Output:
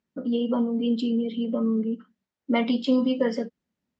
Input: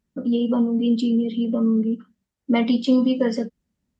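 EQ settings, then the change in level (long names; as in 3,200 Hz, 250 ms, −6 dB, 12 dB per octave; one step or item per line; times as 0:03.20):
high-pass filter 330 Hz 6 dB per octave
high-frequency loss of the air 96 metres
0.0 dB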